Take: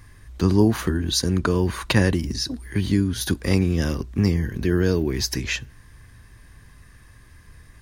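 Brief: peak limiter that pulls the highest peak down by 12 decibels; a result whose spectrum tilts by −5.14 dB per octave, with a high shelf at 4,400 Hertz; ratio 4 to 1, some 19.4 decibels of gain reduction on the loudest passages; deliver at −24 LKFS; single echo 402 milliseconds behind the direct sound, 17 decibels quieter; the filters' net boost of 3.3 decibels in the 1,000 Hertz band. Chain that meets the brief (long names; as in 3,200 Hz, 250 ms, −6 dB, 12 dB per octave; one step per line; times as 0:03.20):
parametric band 1,000 Hz +4.5 dB
high-shelf EQ 4,400 Hz −6.5 dB
downward compressor 4 to 1, threshold −36 dBFS
brickwall limiter −29 dBFS
single-tap delay 402 ms −17 dB
level +17 dB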